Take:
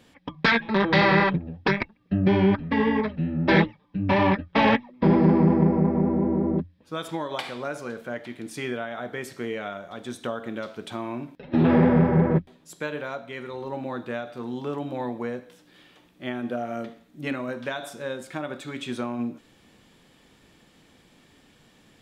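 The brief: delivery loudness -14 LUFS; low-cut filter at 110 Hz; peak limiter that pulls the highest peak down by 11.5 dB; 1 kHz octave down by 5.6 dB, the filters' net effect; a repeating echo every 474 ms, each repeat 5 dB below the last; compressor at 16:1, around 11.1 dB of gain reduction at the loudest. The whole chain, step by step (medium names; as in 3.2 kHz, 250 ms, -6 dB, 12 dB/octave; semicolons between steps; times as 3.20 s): high-pass 110 Hz; peaking EQ 1 kHz -7 dB; compression 16:1, threshold -26 dBFS; peak limiter -25 dBFS; feedback delay 474 ms, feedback 56%, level -5 dB; trim +20.5 dB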